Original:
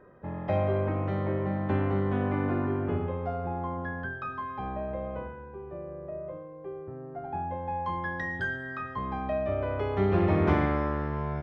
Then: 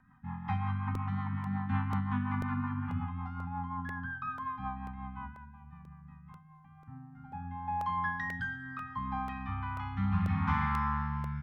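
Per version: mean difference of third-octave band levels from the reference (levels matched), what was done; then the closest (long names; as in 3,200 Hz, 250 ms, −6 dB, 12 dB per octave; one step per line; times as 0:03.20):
7.5 dB: brick-wall band-stop 280–750 Hz
dynamic equaliser 1,100 Hz, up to +6 dB, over −50 dBFS, Q 1.7
rotating-speaker cabinet horn 5.5 Hz, later 0.7 Hz, at 0:06.20
regular buffer underruns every 0.49 s, samples 64, repeat, from 0:00.95
level −2 dB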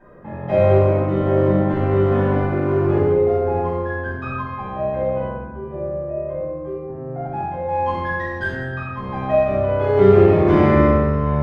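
3.5 dB: dynamic equaliser 400 Hz, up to +8 dB, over −44 dBFS, Q 2.9
in parallel at −10.5 dB: gain into a clipping stage and back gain 29 dB
on the sum: amplitude tremolo 1.4 Hz, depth 38%
rectangular room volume 480 cubic metres, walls mixed, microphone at 8.2 metres
level −7 dB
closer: second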